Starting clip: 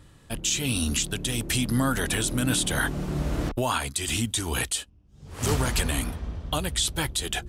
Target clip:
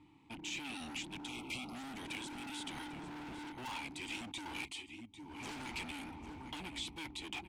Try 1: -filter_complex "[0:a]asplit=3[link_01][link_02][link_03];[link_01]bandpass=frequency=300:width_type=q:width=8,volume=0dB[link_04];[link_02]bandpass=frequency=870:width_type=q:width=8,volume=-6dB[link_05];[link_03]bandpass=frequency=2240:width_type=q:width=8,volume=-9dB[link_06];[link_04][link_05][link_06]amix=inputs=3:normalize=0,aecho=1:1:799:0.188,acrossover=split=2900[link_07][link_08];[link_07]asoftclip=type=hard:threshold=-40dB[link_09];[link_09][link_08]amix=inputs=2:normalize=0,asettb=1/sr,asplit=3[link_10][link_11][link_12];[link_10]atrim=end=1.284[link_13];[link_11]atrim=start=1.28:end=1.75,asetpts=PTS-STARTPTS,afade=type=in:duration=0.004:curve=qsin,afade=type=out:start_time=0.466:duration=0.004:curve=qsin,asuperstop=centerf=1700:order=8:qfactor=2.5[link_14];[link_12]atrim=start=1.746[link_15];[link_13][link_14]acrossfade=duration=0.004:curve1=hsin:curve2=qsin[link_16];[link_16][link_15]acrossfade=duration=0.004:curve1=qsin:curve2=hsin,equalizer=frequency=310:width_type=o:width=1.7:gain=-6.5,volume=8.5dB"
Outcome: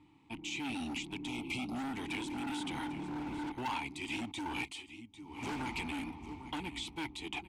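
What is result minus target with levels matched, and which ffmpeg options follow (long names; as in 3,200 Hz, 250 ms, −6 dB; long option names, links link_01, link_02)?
hard clipping: distortion −4 dB
-filter_complex "[0:a]asplit=3[link_01][link_02][link_03];[link_01]bandpass=frequency=300:width_type=q:width=8,volume=0dB[link_04];[link_02]bandpass=frequency=870:width_type=q:width=8,volume=-6dB[link_05];[link_03]bandpass=frequency=2240:width_type=q:width=8,volume=-9dB[link_06];[link_04][link_05][link_06]amix=inputs=3:normalize=0,aecho=1:1:799:0.188,acrossover=split=2900[link_07][link_08];[link_07]asoftclip=type=hard:threshold=-49.5dB[link_09];[link_09][link_08]amix=inputs=2:normalize=0,asettb=1/sr,asplit=3[link_10][link_11][link_12];[link_10]atrim=end=1.284[link_13];[link_11]atrim=start=1.28:end=1.75,asetpts=PTS-STARTPTS,afade=type=in:duration=0.004:curve=qsin,afade=type=out:start_time=0.466:duration=0.004:curve=qsin,asuperstop=centerf=1700:order=8:qfactor=2.5[link_14];[link_12]atrim=start=1.746[link_15];[link_13][link_14]acrossfade=duration=0.004:curve1=hsin:curve2=qsin[link_16];[link_16][link_15]acrossfade=duration=0.004:curve1=qsin:curve2=hsin,equalizer=frequency=310:width_type=o:width=1.7:gain=-6.5,volume=8.5dB"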